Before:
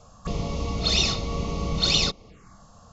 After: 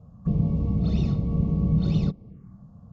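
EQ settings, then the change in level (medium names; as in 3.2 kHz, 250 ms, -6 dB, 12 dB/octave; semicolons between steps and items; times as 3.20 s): band-pass filter 160 Hz, Q 1.6; bass shelf 150 Hz +8 dB; +6.5 dB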